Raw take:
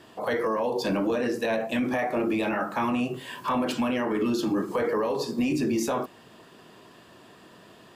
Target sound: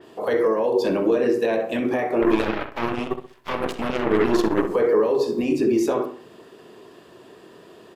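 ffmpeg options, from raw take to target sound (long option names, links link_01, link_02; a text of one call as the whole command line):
ffmpeg -i in.wav -filter_complex "[0:a]equalizer=frequency=400:width=1.9:gain=10.5,bandreject=frequency=50:width_type=h:width=6,bandreject=frequency=100:width_type=h:width=6,bandreject=frequency=150:width_type=h:width=6,bandreject=frequency=200:width_type=h:width=6,bandreject=frequency=250:width_type=h:width=6,bandreject=frequency=300:width_type=h:width=6,asettb=1/sr,asplit=3[link_01][link_02][link_03];[link_01]atrim=end=2.224[link_04];[link_02]atrim=start=2.22:end=4.67,asetpts=PTS-STARTPTS,afade=type=in:duration=0.004:curve=qsin,afade=type=out:start_time=2.446:duration=0.004:curve=qsin,aeval=exprs='0.316*(cos(1*acos(clip(val(0)/0.316,-1,1)))-cos(1*PI/2))+0.0282*(cos(4*acos(clip(val(0)/0.316,-1,1)))-cos(4*PI/2))+0.0562*(cos(6*acos(clip(val(0)/0.316,-1,1)))-cos(6*PI/2))+0.0501*(cos(7*acos(clip(val(0)/0.316,-1,1)))-cos(7*PI/2))+0.0141*(cos(8*acos(clip(val(0)/0.316,-1,1)))-cos(8*PI/2))':channel_layout=same[link_05];[link_03]atrim=start=4.666[link_06];[link_04][link_05]acrossfade=duration=0.004:curve1=hsin:curve2=qsin[link_07];[link_07][link_06]acrossfade=duration=0.004:curve1=qsin:curve2=hsin,asplit=2[link_08][link_09];[link_09]adelay=65,lowpass=frequency=3000:poles=1,volume=-9dB,asplit=2[link_10][link_11];[link_11]adelay=65,lowpass=frequency=3000:poles=1,volume=0.37,asplit=2[link_12][link_13];[link_13]adelay=65,lowpass=frequency=3000:poles=1,volume=0.37,asplit=2[link_14][link_15];[link_15]adelay=65,lowpass=frequency=3000:poles=1,volume=0.37[link_16];[link_08][link_10][link_12][link_14][link_16]amix=inputs=5:normalize=0,adynamicequalizer=threshold=0.00501:dfrequency=4300:dqfactor=0.7:tfrequency=4300:tqfactor=0.7:attack=5:release=100:ratio=0.375:range=1.5:mode=cutabove:tftype=highshelf" out.wav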